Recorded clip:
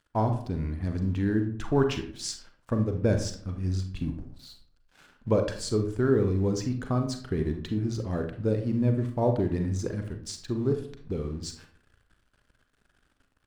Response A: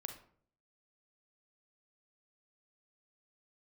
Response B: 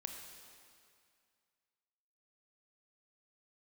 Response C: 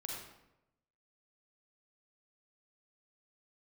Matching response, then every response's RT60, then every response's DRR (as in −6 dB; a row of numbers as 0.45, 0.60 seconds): A; 0.55, 2.2, 0.90 seconds; 5.0, 3.0, −2.5 decibels